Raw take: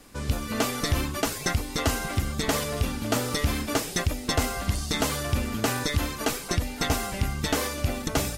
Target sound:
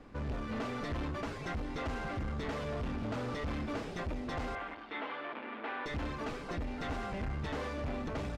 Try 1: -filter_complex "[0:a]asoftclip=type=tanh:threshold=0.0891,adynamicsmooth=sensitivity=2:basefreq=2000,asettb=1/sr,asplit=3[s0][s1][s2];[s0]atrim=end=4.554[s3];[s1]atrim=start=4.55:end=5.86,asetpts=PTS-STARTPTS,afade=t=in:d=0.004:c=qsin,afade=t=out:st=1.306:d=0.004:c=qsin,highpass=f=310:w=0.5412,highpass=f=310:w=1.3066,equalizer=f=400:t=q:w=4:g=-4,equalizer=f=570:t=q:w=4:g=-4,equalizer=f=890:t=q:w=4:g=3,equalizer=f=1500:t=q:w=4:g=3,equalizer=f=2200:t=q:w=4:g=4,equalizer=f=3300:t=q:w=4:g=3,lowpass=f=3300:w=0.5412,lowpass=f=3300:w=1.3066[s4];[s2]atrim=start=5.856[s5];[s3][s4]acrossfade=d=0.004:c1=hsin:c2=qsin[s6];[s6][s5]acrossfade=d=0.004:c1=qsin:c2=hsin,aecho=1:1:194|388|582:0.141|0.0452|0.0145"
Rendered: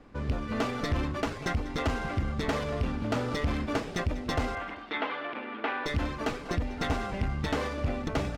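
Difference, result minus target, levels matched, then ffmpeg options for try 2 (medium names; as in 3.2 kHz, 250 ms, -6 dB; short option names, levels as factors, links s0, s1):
saturation: distortion -9 dB
-filter_complex "[0:a]asoftclip=type=tanh:threshold=0.0224,adynamicsmooth=sensitivity=2:basefreq=2000,asettb=1/sr,asplit=3[s0][s1][s2];[s0]atrim=end=4.554[s3];[s1]atrim=start=4.55:end=5.86,asetpts=PTS-STARTPTS,afade=t=in:d=0.004:c=qsin,afade=t=out:st=1.306:d=0.004:c=qsin,highpass=f=310:w=0.5412,highpass=f=310:w=1.3066,equalizer=f=400:t=q:w=4:g=-4,equalizer=f=570:t=q:w=4:g=-4,equalizer=f=890:t=q:w=4:g=3,equalizer=f=1500:t=q:w=4:g=3,equalizer=f=2200:t=q:w=4:g=4,equalizer=f=3300:t=q:w=4:g=3,lowpass=f=3300:w=0.5412,lowpass=f=3300:w=1.3066[s4];[s2]atrim=start=5.856[s5];[s3][s4]acrossfade=d=0.004:c1=hsin:c2=qsin[s6];[s6][s5]acrossfade=d=0.004:c1=qsin:c2=hsin,aecho=1:1:194|388|582:0.141|0.0452|0.0145"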